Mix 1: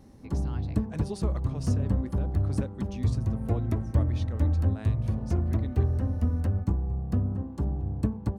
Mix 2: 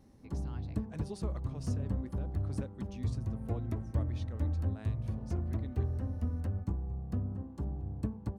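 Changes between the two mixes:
speech −7.0 dB
background −8.0 dB

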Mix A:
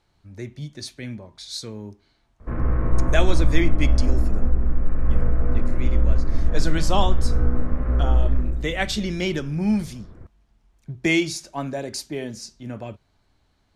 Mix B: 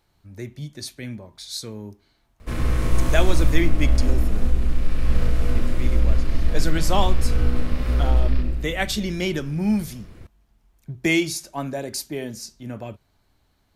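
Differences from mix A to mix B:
speech: remove low-pass filter 8,000 Hz 12 dB per octave
background: remove low-pass filter 1,600 Hz 24 dB per octave

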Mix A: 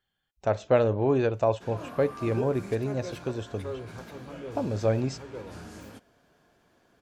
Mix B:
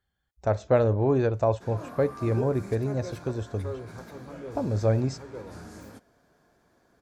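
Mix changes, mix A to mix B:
speech: add parametric band 63 Hz +12.5 dB 1.2 octaves
master: add parametric band 2,900 Hz −9 dB 0.54 octaves

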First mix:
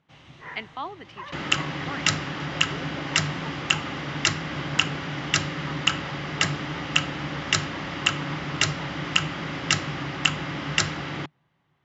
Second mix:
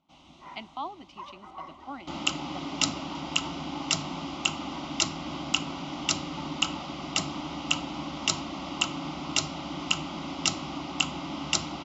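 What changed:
second sound: entry +0.75 s
master: add phaser with its sweep stopped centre 460 Hz, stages 6

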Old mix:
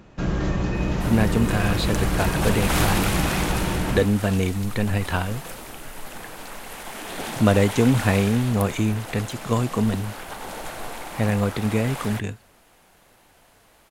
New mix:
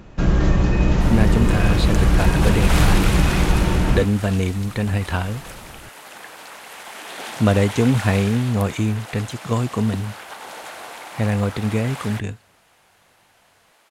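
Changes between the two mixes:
first sound +4.0 dB
second sound: add meter weighting curve A
master: add low-shelf EQ 63 Hz +9.5 dB

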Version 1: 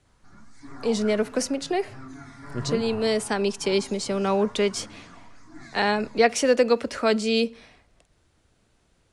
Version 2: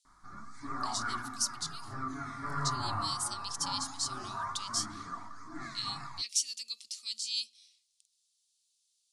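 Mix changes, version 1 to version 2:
speech: add inverse Chebyshev high-pass filter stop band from 1,600 Hz, stop band 50 dB
master: add parametric band 1,200 Hz +14.5 dB 0.36 octaves

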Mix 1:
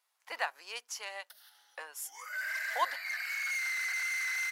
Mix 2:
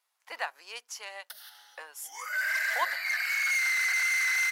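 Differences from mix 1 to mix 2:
first sound +10.0 dB
second sound +7.0 dB

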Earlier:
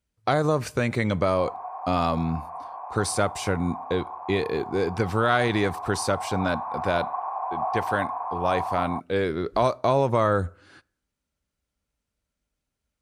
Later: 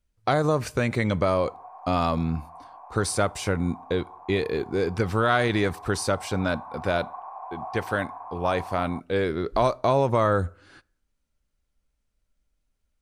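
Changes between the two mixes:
background −8.5 dB
master: remove high-pass filter 68 Hz

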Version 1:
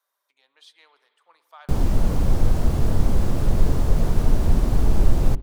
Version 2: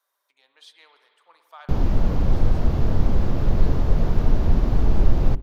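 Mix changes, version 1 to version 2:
speech: send +7.0 dB
background: add moving average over 5 samples

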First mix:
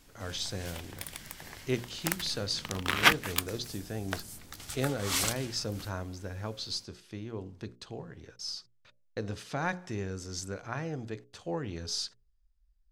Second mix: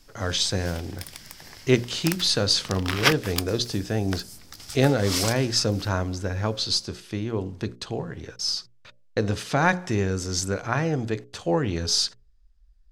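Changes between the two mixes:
speech +11.5 dB
background: add parametric band 5,100 Hz +9.5 dB 0.41 octaves

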